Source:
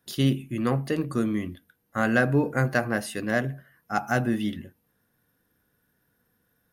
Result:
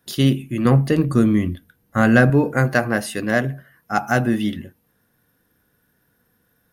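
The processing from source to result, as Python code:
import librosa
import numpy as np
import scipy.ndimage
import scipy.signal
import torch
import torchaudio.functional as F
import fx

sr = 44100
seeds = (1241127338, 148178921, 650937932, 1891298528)

y = fx.low_shelf(x, sr, hz=190.0, db=10.0, at=(0.65, 2.3))
y = y * 10.0 ** (6.0 / 20.0)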